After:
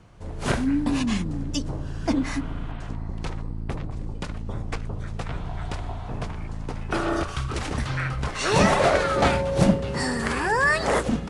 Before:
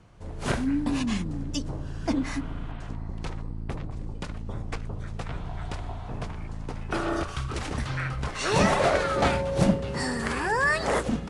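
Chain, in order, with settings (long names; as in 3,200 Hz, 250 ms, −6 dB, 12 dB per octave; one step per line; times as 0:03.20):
level +3 dB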